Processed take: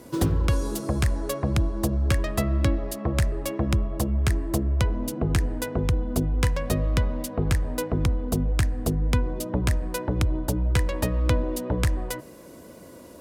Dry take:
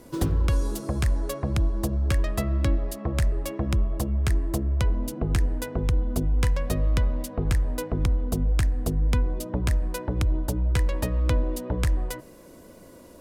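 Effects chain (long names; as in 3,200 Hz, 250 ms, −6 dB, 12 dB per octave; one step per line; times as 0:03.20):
high-pass filter 62 Hz
level +3 dB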